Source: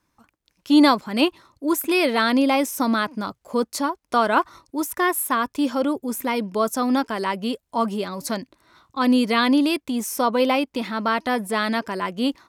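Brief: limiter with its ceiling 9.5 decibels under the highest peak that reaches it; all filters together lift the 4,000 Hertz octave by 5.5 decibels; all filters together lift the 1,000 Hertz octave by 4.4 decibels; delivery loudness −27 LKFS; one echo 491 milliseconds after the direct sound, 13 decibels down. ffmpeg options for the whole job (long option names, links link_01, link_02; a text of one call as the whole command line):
ffmpeg -i in.wav -af "equalizer=frequency=1000:width_type=o:gain=5,equalizer=frequency=4000:width_type=o:gain=6.5,alimiter=limit=-11.5dB:level=0:latency=1,aecho=1:1:491:0.224,volume=-4.5dB" out.wav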